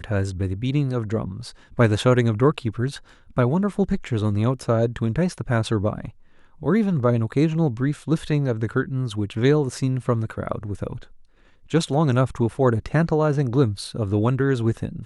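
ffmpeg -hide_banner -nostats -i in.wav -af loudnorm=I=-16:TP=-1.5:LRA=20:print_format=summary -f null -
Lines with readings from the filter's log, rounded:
Input Integrated:    -22.5 LUFS
Input True Peak:      -5.6 dBTP
Input LRA:             2.1 LU
Input Threshold:     -32.9 LUFS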